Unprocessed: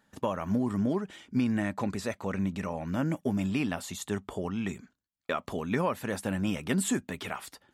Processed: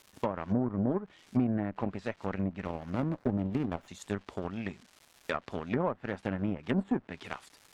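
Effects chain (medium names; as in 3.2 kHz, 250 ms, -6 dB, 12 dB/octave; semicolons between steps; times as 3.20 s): Chebyshev shaper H 7 -20 dB, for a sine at -15 dBFS; crackle 470 per s -44 dBFS; low-pass that closes with the level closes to 1 kHz, closed at -26.5 dBFS; 2.65–3.88 s: sliding maximum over 9 samples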